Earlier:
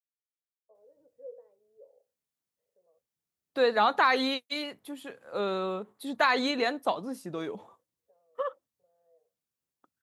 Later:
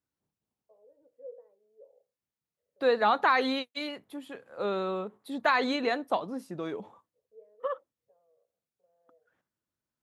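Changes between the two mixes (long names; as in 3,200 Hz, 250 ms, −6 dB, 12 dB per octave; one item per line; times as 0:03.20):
second voice: entry −0.75 s
master: add high-shelf EQ 4,100 Hz −7.5 dB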